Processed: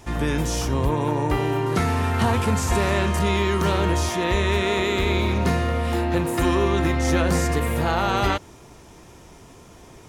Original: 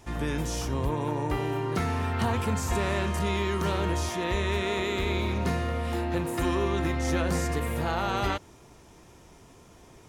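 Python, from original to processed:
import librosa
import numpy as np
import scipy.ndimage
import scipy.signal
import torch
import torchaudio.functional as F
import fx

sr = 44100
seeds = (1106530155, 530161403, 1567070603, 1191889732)

y = fx.cvsd(x, sr, bps=64000, at=(1.66, 2.91))
y = y * librosa.db_to_amplitude(6.5)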